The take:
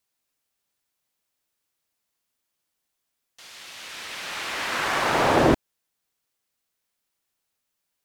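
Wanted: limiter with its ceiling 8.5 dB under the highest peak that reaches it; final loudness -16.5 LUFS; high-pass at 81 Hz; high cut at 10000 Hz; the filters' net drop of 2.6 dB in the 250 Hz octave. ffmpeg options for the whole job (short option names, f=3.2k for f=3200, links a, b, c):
-af "highpass=81,lowpass=10k,equalizer=f=250:t=o:g=-3.5,volume=11dB,alimiter=limit=-4dB:level=0:latency=1"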